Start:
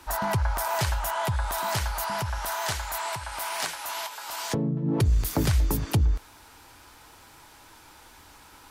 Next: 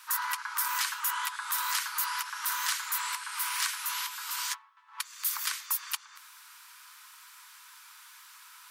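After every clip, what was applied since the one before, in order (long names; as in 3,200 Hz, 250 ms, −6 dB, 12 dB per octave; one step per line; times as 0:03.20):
Butterworth high-pass 1,000 Hz 72 dB per octave
high-shelf EQ 9,600 Hz +5.5 dB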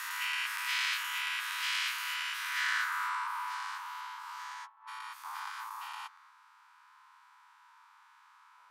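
every bin's largest magnitude spread in time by 240 ms
band-pass filter sweep 2,500 Hz → 710 Hz, 0:02.39–0:03.62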